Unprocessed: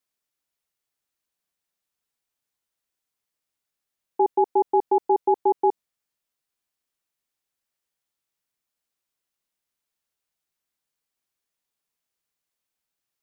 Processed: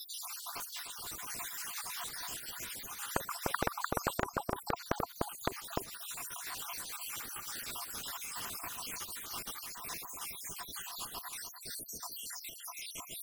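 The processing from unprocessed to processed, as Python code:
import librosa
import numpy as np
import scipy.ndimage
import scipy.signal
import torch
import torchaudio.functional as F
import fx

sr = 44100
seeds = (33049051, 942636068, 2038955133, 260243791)

p1 = fx.spec_dropout(x, sr, seeds[0], share_pct=83)
p2 = fx.env_lowpass_down(p1, sr, base_hz=330.0, full_db=-32.0)
p3 = fx.peak_eq(p2, sr, hz=590.0, db=-14.5, octaves=0.47)
p4 = fx.gate_flip(p3, sr, shuts_db=-33.0, range_db=-29)
p5 = fx.level_steps(p4, sr, step_db=19)
p6 = p4 + (p5 * 10.0 ** (1.0 / 20.0))
p7 = fx.small_body(p6, sr, hz=(690.0, 1000.0), ring_ms=40, db=15)
p8 = fx.echo_pitch(p7, sr, ms=99, semitones=3, count=2, db_per_echo=-3.0)
p9 = p8 + 10.0 ** (-9.0 / 20.0) * np.pad(p8, (int(299 * sr / 1000.0), 0))[:len(p8)]
p10 = fx.spectral_comp(p9, sr, ratio=10.0)
y = p10 * 10.0 ** (16.0 / 20.0)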